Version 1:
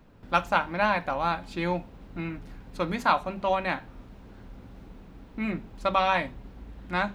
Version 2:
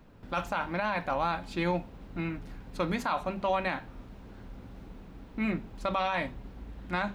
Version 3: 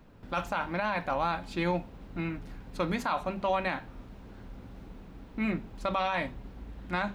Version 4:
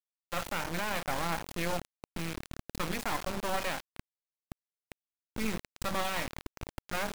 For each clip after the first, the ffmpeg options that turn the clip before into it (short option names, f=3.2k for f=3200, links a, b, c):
-af "alimiter=limit=-19dB:level=0:latency=1:release=33"
-af anull
-af "aphaser=in_gain=1:out_gain=1:delay=1.9:decay=0.31:speed=1.5:type=triangular,bandreject=f=106.1:t=h:w=4,bandreject=f=212.2:t=h:w=4,bandreject=f=318.3:t=h:w=4,bandreject=f=424.4:t=h:w=4,bandreject=f=530.5:t=h:w=4,bandreject=f=636.6:t=h:w=4,bandreject=f=742.7:t=h:w=4,bandreject=f=848.8:t=h:w=4,bandreject=f=954.9:t=h:w=4,bandreject=f=1.061k:t=h:w=4,bandreject=f=1.1671k:t=h:w=4,bandreject=f=1.2732k:t=h:w=4,bandreject=f=1.3793k:t=h:w=4,bandreject=f=1.4854k:t=h:w=4,bandreject=f=1.5915k:t=h:w=4,bandreject=f=1.6976k:t=h:w=4,bandreject=f=1.8037k:t=h:w=4,bandreject=f=1.9098k:t=h:w=4,bandreject=f=2.0159k:t=h:w=4,bandreject=f=2.122k:t=h:w=4,bandreject=f=2.2281k:t=h:w=4,bandreject=f=2.3342k:t=h:w=4,bandreject=f=2.4403k:t=h:w=4,bandreject=f=2.5464k:t=h:w=4,bandreject=f=2.6525k:t=h:w=4,bandreject=f=2.7586k:t=h:w=4,bandreject=f=2.8647k:t=h:w=4,bandreject=f=2.9708k:t=h:w=4,bandreject=f=3.0769k:t=h:w=4,bandreject=f=3.183k:t=h:w=4,bandreject=f=3.2891k:t=h:w=4,bandreject=f=3.3952k:t=h:w=4,acrusher=bits=3:dc=4:mix=0:aa=0.000001"